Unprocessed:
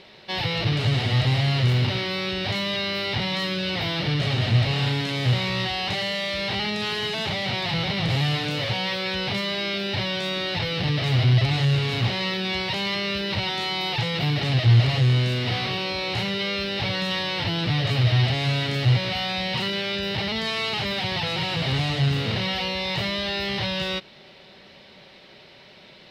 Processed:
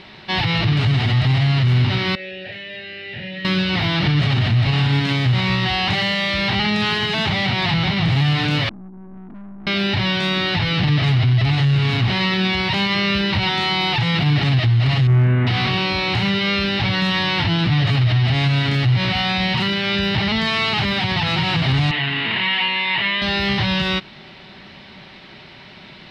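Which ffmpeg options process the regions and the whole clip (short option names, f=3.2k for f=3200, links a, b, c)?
-filter_complex "[0:a]asettb=1/sr,asplit=3[a][b][c];[a]atrim=end=2.154[d];[b]atrim=start=2.15:end=3.45,asetpts=PTS-STARTPTS,afade=t=in:d=0.004:c=qsin,afade=t=out:st=1.296:d=0.004:c=qsin,asubboost=boost=10:cutoff=230,asplit=3[e][f][g];[e]bandpass=f=530:t=q:w=8,volume=0dB[h];[f]bandpass=f=1.84k:t=q:w=8,volume=-6dB[i];[g]bandpass=f=2.48k:t=q:w=8,volume=-9dB[j];[h][i][j]amix=inputs=3:normalize=0,asplit=2[k][l];[l]adelay=43,volume=-5.5dB[m];[k][m]amix=inputs=2:normalize=0,atrim=end_sample=57330[n];[c]atrim=start=3.446[o];[d][n]acrossfade=d=0.004:c1=hsin:c2=qsin[p];[p][o]acrossfade=d=0.004:c1=qsin:c2=hsin,asettb=1/sr,asplit=3[q][r][s];[q]atrim=end=8.694[t];[r]atrim=start=8.69:end=9.67,asetpts=PTS-STARTPTS,afade=t=in:d=0.004:c=qsin,afade=t=out:st=0.976:d=0.004:c=qsin,asuperpass=centerf=260:order=8:qfactor=1.7,aeval=exprs='(tanh(200*val(0)+0.65)-tanh(0.65))/200':c=same[u];[s]atrim=start=9.666[v];[t][u]acrossfade=d=0.004:c1=hsin:c2=qsin[w];[w][v]acrossfade=d=0.004:c1=qsin:c2=hsin,asettb=1/sr,asplit=3[x][y][z];[x]atrim=end=15.074[aa];[y]atrim=start=15.07:end=15.47,asetpts=PTS-STARTPTS,afade=t=in:d=0.004:c=qsin,afade=t=out:st=0.396:d=0.004:c=qsin,lowpass=f=1.9k:w=0.5412,lowpass=f=1.9k:w=1.3066,asoftclip=type=hard:threshold=-19.5dB[ab];[z]atrim=start=15.466[ac];[aa][ab]acrossfade=d=0.004:c1=hsin:c2=qsin[ad];[ad][ac]acrossfade=d=0.004:c1=qsin:c2=hsin,asettb=1/sr,asplit=3[ae][af][ag];[ae]atrim=end=21.914[ah];[af]atrim=start=21.91:end=23.22,asetpts=PTS-STARTPTS,afade=t=in:d=0.004:c=qsin,afade=t=out:st=1.306:d=0.004:c=qsin,highpass=370,equalizer=f=390:t=q:w=4:g=-4,equalizer=f=550:t=q:w=4:g=-9,equalizer=f=890:t=q:w=4:g=4,equalizer=f=1.3k:t=q:w=4:g=-6,equalizer=f=1.9k:t=q:w=4:g=5,equalizer=f=2.8k:t=q:w=4:g=4,lowpass=f=3.5k:w=0.5412,lowpass=f=3.5k:w=1.3066,bandreject=f=780:w=6.1[ai];[ag]atrim=start=23.216[aj];[ah][ai]acrossfade=d=0.004:c1=hsin:c2=qsin[ak];[ak][aj]acrossfade=d=0.004:c1=qsin:c2=hsin,lowpass=f=2.2k:p=1,equalizer=f=510:w=1.9:g=-12,alimiter=level_in=20.5dB:limit=-1dB:release=50:level=0:latency=1,volume=-9dB"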